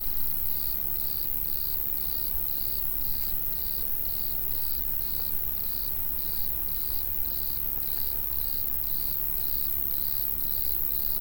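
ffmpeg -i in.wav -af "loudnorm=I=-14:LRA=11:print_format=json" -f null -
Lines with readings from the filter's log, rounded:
"input_i" : "-25.7",
"input_tp" : "-12.0",
"input_lra" : "1.2",
"input_thresh" : "-35.7",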